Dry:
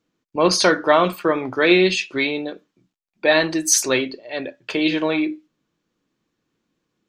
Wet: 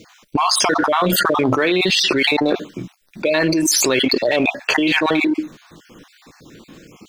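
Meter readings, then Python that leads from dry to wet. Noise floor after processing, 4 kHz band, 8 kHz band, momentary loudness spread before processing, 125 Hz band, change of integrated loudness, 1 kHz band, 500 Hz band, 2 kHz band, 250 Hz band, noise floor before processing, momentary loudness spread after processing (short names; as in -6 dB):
-54 dBFS, +5.0 dB, +1.0 dB, 14 LU, +4.5 dB, +2.0 dB, +3.5 dB, +0.5 dB, +2.5 dB, +3.0 dB, -79 dBFS, 10 LU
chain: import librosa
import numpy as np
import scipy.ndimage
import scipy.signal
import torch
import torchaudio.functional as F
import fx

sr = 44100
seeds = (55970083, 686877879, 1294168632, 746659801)

p1 = fx.spec_dropout(x, sr, seeds[0], share_pct=37)
p2 = np.sign(p1) * np.maximum(np.abs(p1) - 10.0 ** (-33.5 / 20.0), 0.0)
p3 = p1 + (p2 * 10.0 ** (-7.5 / 20.0))
p4 = fx.env_flatten(p3, sr, amount_pct=100)
y = p4 * 10.0 ** (-8.0 / 20.0)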